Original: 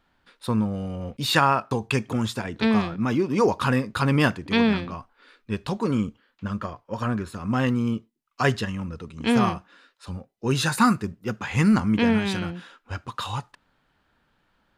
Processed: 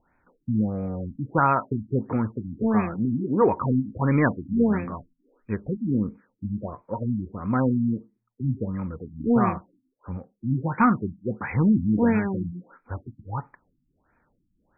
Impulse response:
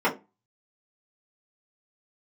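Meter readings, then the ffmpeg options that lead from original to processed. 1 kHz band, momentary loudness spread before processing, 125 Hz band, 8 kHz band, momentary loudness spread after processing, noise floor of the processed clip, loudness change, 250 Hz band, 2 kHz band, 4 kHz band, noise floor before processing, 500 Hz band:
-1.0 dB, 14 LU, 0.0 dB, under -40 dB, 14 LU, -73 dBFS, -1.0 dB, 0.0 dB, -6.0 dB, under -40 dB, -69 dBFS, -0.5 dB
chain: -filter_complex "[0:a]aeval=exprs='0.631*sin(PI/2*1.41*val(0)/0.631)':c=same,asplit=2[a][b];[1:a]atrim=start_sample=2205,highshelf=f=5.4k:g=-11[c];[b][c]afir=irnorm=-1:irlink=0,volume=-30dB[d];[a][d]amix=inputs=2:normalize=0,afftfilt=real='re*lt(b*sr/1024,290*pow(2600/290,0.5+0.5*sin(2*PI*1.5*pts/sr)))':imag='im*lt(b*sr/1024,290*pow(2600/290,0.5+0.5*sin(2*PI*1.5*pts/sr)))':win_size=1024:overlap=0.75,volume=-6.5dB"

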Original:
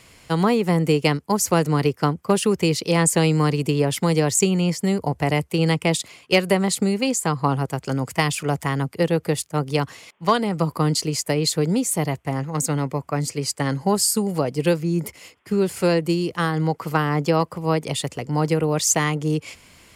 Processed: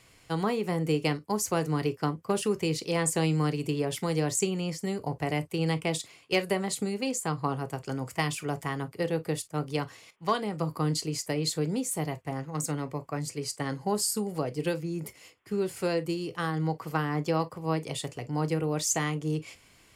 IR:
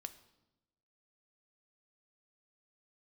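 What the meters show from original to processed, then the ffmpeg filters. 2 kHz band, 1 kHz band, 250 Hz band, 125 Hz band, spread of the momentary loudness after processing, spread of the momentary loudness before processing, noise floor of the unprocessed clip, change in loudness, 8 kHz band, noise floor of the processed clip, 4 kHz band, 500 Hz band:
-8.5 dB, -8.5 dB, -9.0 dB, -9.0 dB, 7 LU, 7 LU, -53 dBFS, -8.5 dB, -8.5 dB, -59 dBFS, -8.5 dB, -8.5 dB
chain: -filter_complex "[1:a]atrim=start_sample=2205,afade=t=out:st=0.14:d=0.01,atrim=end_sample=6615,asetrate=70560,aresample=44100[a];[0:a][a]afir=irnorm=-1:irlink=0"

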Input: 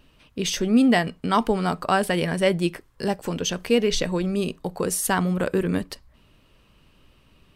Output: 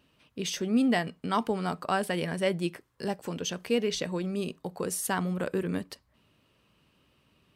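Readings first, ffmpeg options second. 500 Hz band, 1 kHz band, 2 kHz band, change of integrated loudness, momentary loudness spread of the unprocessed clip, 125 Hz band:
-7.0 dB, -7.0 dB, -7.0 dB, -7.0 dB, 9 LU, -7.5 dB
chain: -af "highpass=92,volume=-7dB"

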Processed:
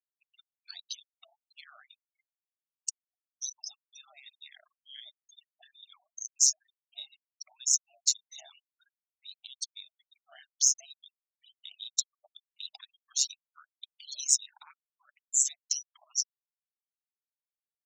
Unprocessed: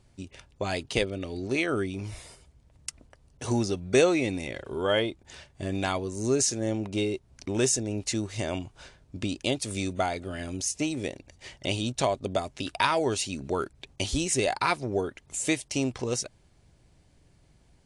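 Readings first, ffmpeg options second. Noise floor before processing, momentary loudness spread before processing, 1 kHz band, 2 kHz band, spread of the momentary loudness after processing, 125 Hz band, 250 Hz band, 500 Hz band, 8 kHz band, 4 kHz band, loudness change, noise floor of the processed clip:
-62 dBFS, 15 LU, under -30 dB, under -20 dB, 23 LU, under -40 dB, under -40 dB, under -40 dB, +4.5 dB, -2.5 dB, -0.5 dB, under -85 dBFS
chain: -af "aeval=exprs='if(lt(val(0),0),0.708*val(0),val(0))':c=same,lowpass=f=6.3k:w=0.5412,lowpass=f=6.3k:w=1.3066,lowshelf=f=130:g=-9.5,acompressor=threshold=-29dB:ratio=8,alimiter=level_in=1.5dB:limit=-24dB:level=0:latency=1:release=441,volume=-1.5dB,aeval=exprs='val(0)*sin(2*PI*69*n/s)':c=same,equalizer=f=4.9k:t=o:w=0.2:g=-5,afftfilt=real='re*gte(hypot(re,im),0.00794)':imag='im*gte(hypot(re,im),0.00794)':win_size=1024:overlap=0.75,aexciter=amount=13.3:drive=8.6:freq=3.9k,afftfilt=real='re*gte(b*sr/1024,590*pow(3100/590,0.5+0.5*sin(2*PI*2.1*pts/sr)))':imag='im*gte(b*sr/1024,590*pow(3100/590,0.5+0.5*sin(2*PI*2.1*pts/sr)))':win_size=1024:overlap=0.75,volume=-7.5dB"

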